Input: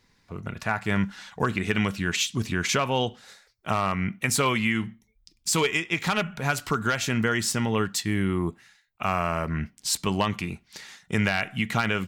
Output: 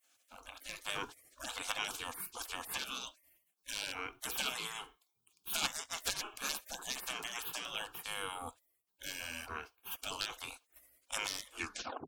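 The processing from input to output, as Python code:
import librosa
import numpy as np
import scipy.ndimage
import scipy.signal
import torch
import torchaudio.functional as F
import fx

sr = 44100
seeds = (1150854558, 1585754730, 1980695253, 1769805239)

y = fx.tape_stop_end(x, sr, length_s=0.57)
y = fx.fixed_phaser(y, sr, hz=390.0, stages=8)
y = fx.spec_gate(y, sr, threshold_db=-25, keep='weak')
y = y * librosa.db_to_amplitude(6.5)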